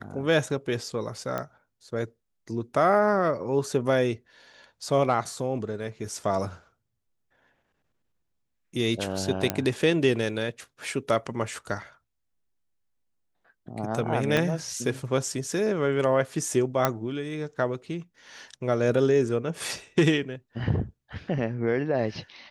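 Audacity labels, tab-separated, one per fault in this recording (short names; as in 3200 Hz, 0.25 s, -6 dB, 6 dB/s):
1.380000	1.380000	pop -17 dBFS
9.500000	9.500000	pop -7 dBFS
14.370000	14.370000	pop -10 dBFS
16.850000	16.850000	pop -7 dBFS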